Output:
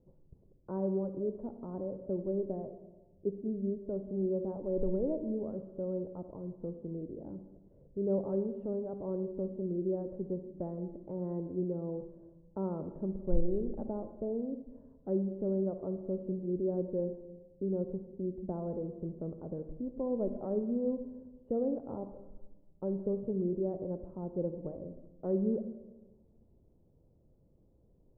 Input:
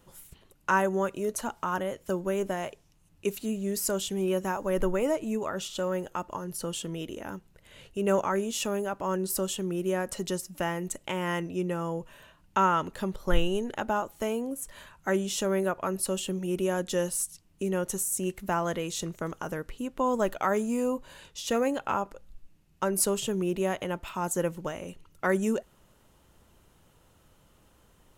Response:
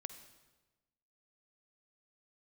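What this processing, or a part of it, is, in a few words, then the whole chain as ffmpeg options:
next room: -filter_complex "[0:a]asettb=1/sr,asplit=3[link_01][link_02][link_03];[link_01]atrim=end=8.324[link_04];[link_02]atrim=start=8.32:end=9.27,asetpts=PTS-STARTPTS,afade=type=in:duration=0.004:curve=qsin,afade=type=out:start_time=0.946:duration=0.004:curve=qsin,highshelf=frequency=2000:gain=10[link_05];[link_03]atrim=start=9.266[link_06];[link_04][link_05]acrossfade=duration=0.004:curve1=hsin:curve2=qsin[link_07];[link_07][link_06]acrossfade=duration=0.004:curve1=qsin:curve2=hsin,lowpass=frequency=550:width=0.5412,lowpass=frequency=550:width=1.3066[link_08];[1:a]atrim=start_sample=2205[link_09];[link_08][link_09]afir=irnorm=-1:irlink=0"

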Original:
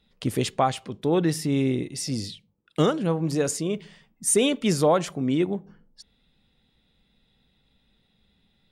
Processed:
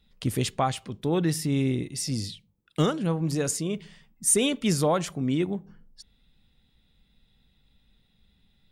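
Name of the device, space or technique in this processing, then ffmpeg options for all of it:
smiley-face EQ: -af "lowshelf=frequency=93:gain=8.5,equalizer=frequency=500:width_type=o:width=1.8:gain=-3.5,highshelf=frequency=9200:gain=5.5,volume=-1.5dB"

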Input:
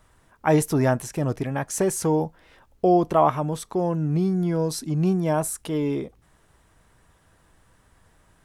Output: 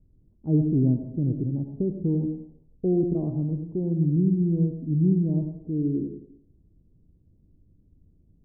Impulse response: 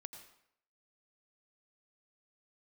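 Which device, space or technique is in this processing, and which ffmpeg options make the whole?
next room: -filter_complex "[0:a]lowpass=frequency=320:width=0.5412,lowpass=frequency=320:width=1.3066[link_01];[1:a]atrim=start_sample=2205[link_02];[link_01][link_02]afir=irnorm=-1:irlink=0,volume=7dB"

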